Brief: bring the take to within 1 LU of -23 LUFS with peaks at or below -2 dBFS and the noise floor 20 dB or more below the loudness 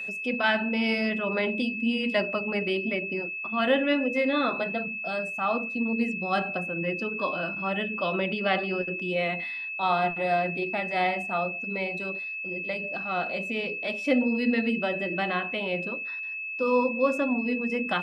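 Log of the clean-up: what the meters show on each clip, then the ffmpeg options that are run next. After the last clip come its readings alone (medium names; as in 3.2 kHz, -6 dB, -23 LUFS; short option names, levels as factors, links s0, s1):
steady tone 2.6 kHz; tone level -32 dBFS; loudness -27.5 LUFS; peak level -11.5 dBFS; loudness target -23.0 LUFS
-> -af "bandreject=f=2600:w=30"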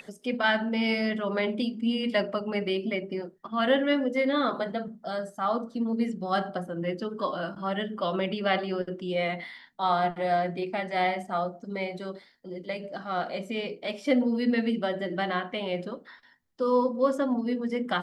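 steady tone not found; loudness -28.5 LUFS; peak level -12.0 dBFS; loudness target -23.0 LUFS
-> -af "volume=1.88"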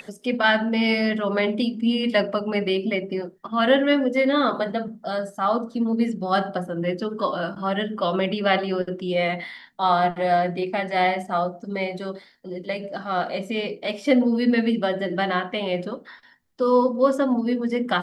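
loudness -23.5 LUFS; peak level -6.5 dBFS; noise floor -53 dBFS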